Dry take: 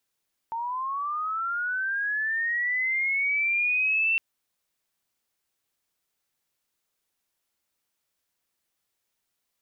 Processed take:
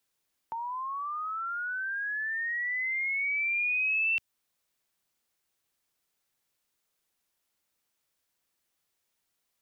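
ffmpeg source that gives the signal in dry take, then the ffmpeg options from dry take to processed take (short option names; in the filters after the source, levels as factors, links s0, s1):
-f lavfi -i "aevalsrc='pow(10,(-28+7.5*t/3.66)/20)*sin(2*PI*(900*t+1800*t*t/(2*3.66)))':d=3.66:s=44100"
-filter_complex "[0:a]acrossover=split=160|3000[s0][s1][s2];[s1]acompressor=threshold=0.0158:ratio=2.5[s3];[s0][s3][s2]amix=inputs=3:normalize=0"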